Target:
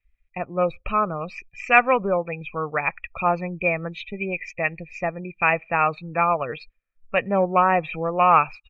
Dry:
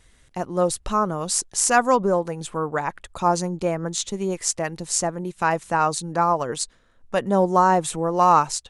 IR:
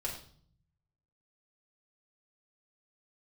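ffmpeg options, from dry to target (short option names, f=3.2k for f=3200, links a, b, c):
-filter_complex "[0:a]aecho=1:1:1.6:0.34,asplit=2[a][b];[1:a]atrim=start_sample=2205,asetrate=88200,aresample=44100[c];[b][c]afir=irnorm=-1:irlink=0,volume=-23.5dB[d];[a][d]amix=inputs=2:normalize=0,aeval=exprs='0.708*(cos(1*acos(clip(val(0)/0.708,-1,1)))-cos(1*PI/2))+0.0398*(cos(3*acos(clip(val(0)/0.708,-1,1)))-cos(3*PI/2))':c=same,lowpass=f=2.4k:t=q:w=14,afftdn=nr=29:nf=-34,volume=-1.5dB"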